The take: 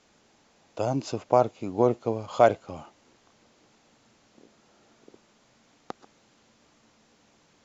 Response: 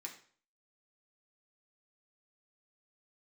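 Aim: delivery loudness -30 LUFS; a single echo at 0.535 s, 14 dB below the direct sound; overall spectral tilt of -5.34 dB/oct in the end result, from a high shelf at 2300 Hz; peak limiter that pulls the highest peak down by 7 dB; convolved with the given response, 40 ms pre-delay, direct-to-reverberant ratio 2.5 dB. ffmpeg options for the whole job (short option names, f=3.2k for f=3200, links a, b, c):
-filter_complex "[0:a]highshelf=f=2.3k:g=-3.5,alimiter=limit=-13.5dB:level=0:latency=1,aecho=1:1:535:0.2,asplit=2[a][b];[1:a]atrim=start_sample=2205,adelay=40[c];[b][c]afir=irnorm=-1:irlink=0,volume=0.5dB[d];[a][d]amix=inputs=2:normalize=0,volume=-1dB"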